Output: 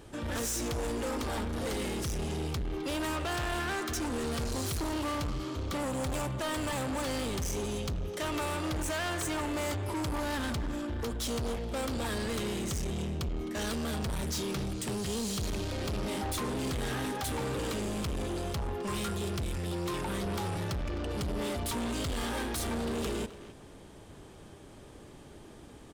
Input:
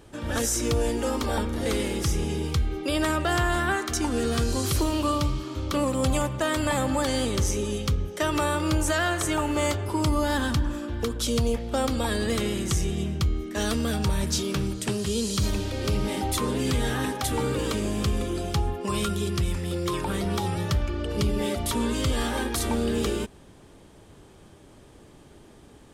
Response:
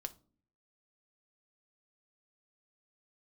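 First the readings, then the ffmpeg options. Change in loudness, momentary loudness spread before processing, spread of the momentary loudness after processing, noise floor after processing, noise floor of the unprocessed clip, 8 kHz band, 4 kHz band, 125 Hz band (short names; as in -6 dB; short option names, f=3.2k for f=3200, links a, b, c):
-7.5 dB, 4 LU, 4 LU, -51 dBFS, -51 dBFS, -7.0 dB, -6.5 dB, -8.0 dB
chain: -filter_complex "[0:a]asoftclip=type=tanh:threshold=-31dB,asplit=2[a][b];[b]adelay=260,highpass=300,lowpass=3.4k,asoftclip=type=hard:threshold=-39.5dB,volume=-8dB[c];[a][c]amix=inputs=2:normalize=0"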